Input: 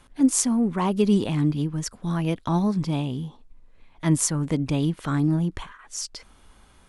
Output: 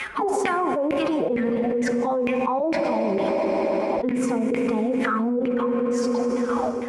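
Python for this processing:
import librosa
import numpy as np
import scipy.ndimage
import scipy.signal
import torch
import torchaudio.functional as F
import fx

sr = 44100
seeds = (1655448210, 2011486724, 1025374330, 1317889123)

p1 = fx.tilt_shelf(x, sr, db=6.5, hz=790.0)
p2 = fx.chopper(p1, sr, hz=0.77, depth_pct=65, duty_pct=15)
p3 = fx.pitch_keep_formants(p2, sr, semitones=7.5)
p4 = fx.rider(p3, sr, range_db=3, speed_s=2.0)
p5 = p3 + F.gain(torch.from_numpy(p4), 2.5).numpy()
p6 = fx.filter_lfo_bandpass(p5, sr, shape='saw_down', hz=2.2, low_hz=370.0, high_hz=2300.0, q=7.6)
p7 = scipy.signal.sosfilt(scipy.signal.butter(2, 49.0, 'highpass', fs=sr, output='sos'), p6)
p8 = fx.high_shelf(p7, sr, hz=6300.0, db=11.0)
p9 = fx.rev_fdn(p8, sr, rt60_s=2.9, lf_ratio=1.0, hf_ratio=0.95, size_ms=38.0, drr_db=8.5)
p10 = fx.env_flatten(p9, sr, amount_pct=100)
y = F.gain(torch.from_numpy(p10), -2.5).numpy()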